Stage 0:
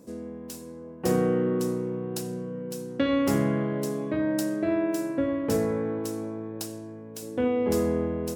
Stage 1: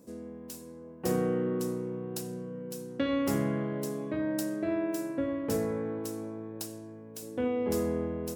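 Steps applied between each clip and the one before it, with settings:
high-shelf EQ 11,000 Hz +5.5 dB
level −5 dB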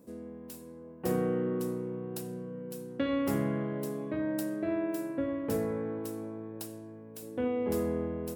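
parametric band 6,100 Hz −7 dB 1.1 octaves
level −1 dB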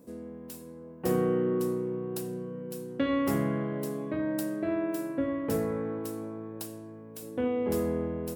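tuned comb filter 53 Hz, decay 0.25 s, harmonics odd, mix 50%
level +6.5 dB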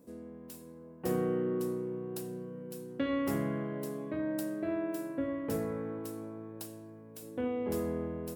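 coupled-rooms reverb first 0.62 s, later 2.3 s, DRR 19 dB
level −4.5 dB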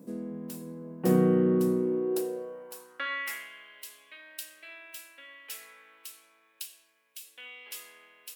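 high-pass filter sweep 180 Hz → 2,800 Hz, 0:01.68–0:03.50
level +5 dB

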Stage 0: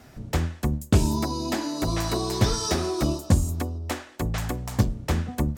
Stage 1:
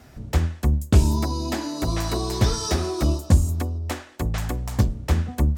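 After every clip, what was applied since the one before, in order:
parametric band 68 Hz +10 dB 0.49 octaves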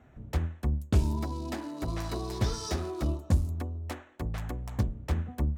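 adaptive Wiener filter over 9 samples
level −8.5 dB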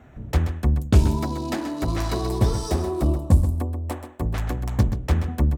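gain on a spectral selection 0:02.28–0:04.22, 1,200–7,500 Hz −7 dB
single-tap delay 130 ms −10 dB
level +8.5 dB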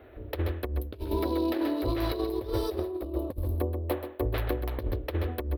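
drawn EQ curve 110 Hz 0 dB, 150 Hz −26 dB, 330 Hz +10 dB, 540 Hz +11 dB, 770 Hz +1 dB, 4,100 Hz +6 dB, 7,100 Hz −22 dB, 12,000 Hz +10 dB
compressor whose output falls as the input rises −21 dBFS, ratio −0.5
level −7.5 dB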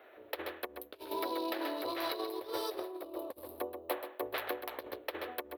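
high-pass filter 630 Hz 12 dB per octave

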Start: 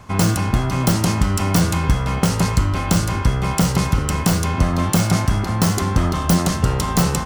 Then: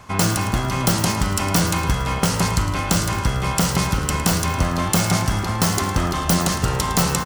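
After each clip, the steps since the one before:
low-shelf EQ 490 Hz −6.5 dB
on a send: repeating echo 109 ms, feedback 57%, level −12.5 dB
on the sum: level +2 dB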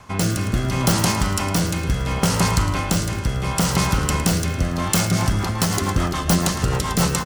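rotating-speaker cabinet horn 0.7 Hz, later 7 Hz, at 0:04.66
in parallel at −11.5 dB: gain into a clipping stage and back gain 18.5 dB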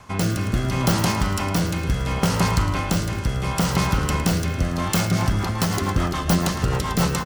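dynamic equaliser 8,700 Hz, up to −6 dB, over −38 dBFS, Q 0.72
level −1 dB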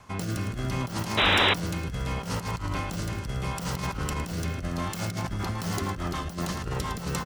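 compressor whose output falls as the input rises −22 dBFS, ratio −0.5
sound drawn into the spectrogram noise, 0:01.17–0:01.54, 230–4,000 Hz −14 dBFS
level −7.5 dB

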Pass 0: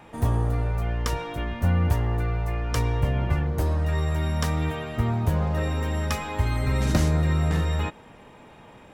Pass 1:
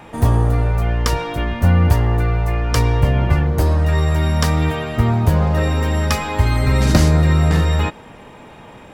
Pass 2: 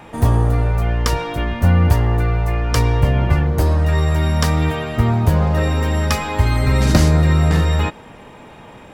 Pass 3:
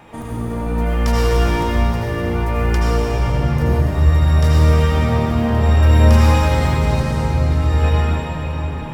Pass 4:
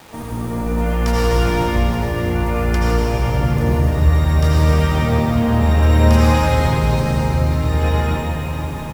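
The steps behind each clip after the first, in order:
dynamic equaliser 4,700 Hz, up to +5 dB, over −59 dBFS, Q 5.7; level +8.5 dB
no processing that can be heard
compressor whose output falls as the input rises −17 dBFS, ratio −0.5; bit-depth reduction 12 bits, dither triangular; convolution reverb RT60 5.3 s, pre-delay 69 ms, DRR −7.5 dB; level −7 dB
bit reduction 7 bits; on a send: single-tap delay 160 ms −8 dB

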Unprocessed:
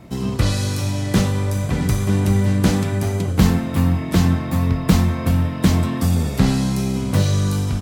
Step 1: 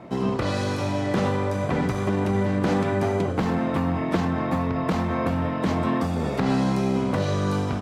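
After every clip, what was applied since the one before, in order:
brickwall limiter −12.5 dBFS, peak gain reduction 11 dB
resonant band-pass 730 Hz, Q 0.62
level +5.5 dB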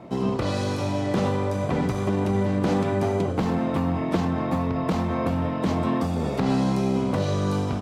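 parametric band 1,700 Hz −4.5 dB 0.97 octaves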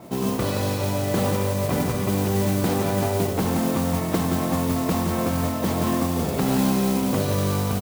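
single-tap delay 172 ms −6.5 dB
noise that follows the level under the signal 13 dB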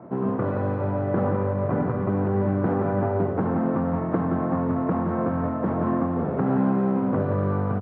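elliptic band-pass filter 100–1,500 Hz, stop band 80 dB

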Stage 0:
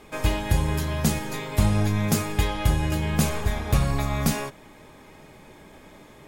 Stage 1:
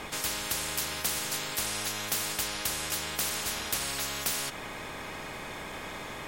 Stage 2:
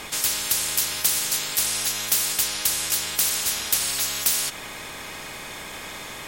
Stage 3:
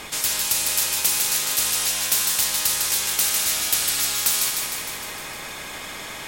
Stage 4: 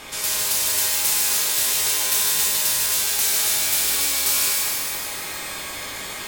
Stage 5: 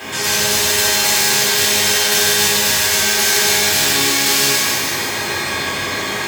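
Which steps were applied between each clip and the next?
high-shelf EQ 7,500 Hz −5.5 dB; every bin compressed towards the loudest bin 10 to 1; level −2 dB
high-shelf EQ 2,700 Hz +11 dB
feedback echo with a high-pass in the loop 153 ms, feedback 66%, level −4 dB
reverb with rising layers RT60 1.3 s, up +12 semitones, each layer −2 dB, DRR −2.5 dB; level −4 dB
in parallel at −4 dB: bit-depth reduction 6 bits, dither triangular; on the sum: convolution reverb RT60 0.85 s, pre-delay 3 ms, DRR −4 dB; level −5.5 dB

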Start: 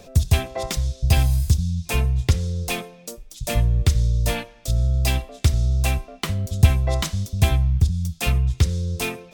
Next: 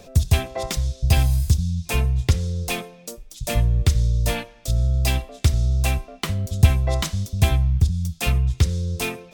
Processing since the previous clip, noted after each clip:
no processing that can be heard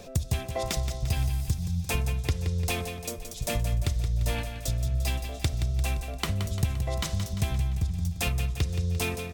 downward compressor 3 to 1, threshold −27 dBFS, peak gain reduction 14.5 dB
on a send: repeating echo 173 ms, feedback 55%, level −9 dB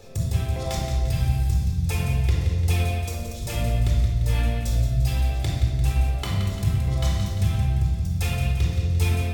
rectangular room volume 2,000 cubic metres, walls mixed, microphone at 4.1 metres
level −5.5 dB

